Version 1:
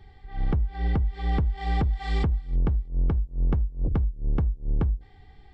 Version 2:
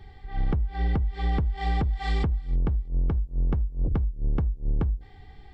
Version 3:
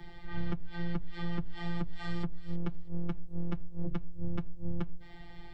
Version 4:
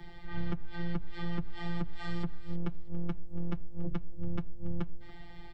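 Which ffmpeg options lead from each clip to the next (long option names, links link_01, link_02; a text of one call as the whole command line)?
ffmpeg -i in.wav -af "acompressor=threshold=-25dB:ratio=6,volume=3.5dB" out.wav
ffmpeg -i in.wav -filter_complex "[0:a]afftfilt=real='hypot(re,im)*cos(PI*b)':imag='0':win_size=1024:overlap=0.75,acrossover=split=83|210|1700[link_01][link_02][link_03][link_04];[link_01]acompressor=threshold=-33dB:ratio=4[link_05];[link_02]acompressor=threshold=-45dB:ratio=4[link_06];[link_03]acompressor=threshold=-50dB:ratio=4[link_07];[link_04]acompressor=threshold=-56dB:ratio=4[link_08];[link_05][link_06][link_07][link_08]amix=inputs=4:normalize=0,volume=6dB" out.wav
ffmpeg -i in.wav -af "aecho=1:1:282:0.112" out.wav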